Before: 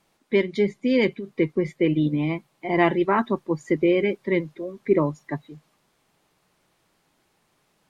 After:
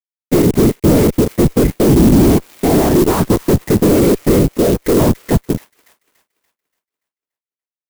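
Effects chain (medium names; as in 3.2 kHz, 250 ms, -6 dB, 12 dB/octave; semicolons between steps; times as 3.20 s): median filter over 15 samples; bass shelf 270 Hz -11.5 dB; compression, threshold -25 dBFS, peak gain reduction 9 dB; whisper effect; fuzz box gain 45 dB, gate -49 dBFS; tilt shelf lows +10 dB, about 660 Hz; feedback echo behind a high-pass 288 ms, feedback 42%, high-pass 3.4 kHz, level -6 dB; sampling jitter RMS 0.069 ms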